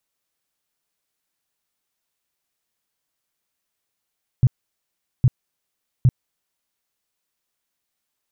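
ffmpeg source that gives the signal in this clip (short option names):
-f lavfi -i "aevalsrc='0.335*sin(2*PI*126*mod(t,0.81))*lt(mod(t,0.81),5/126)':d=2.43:s=44100"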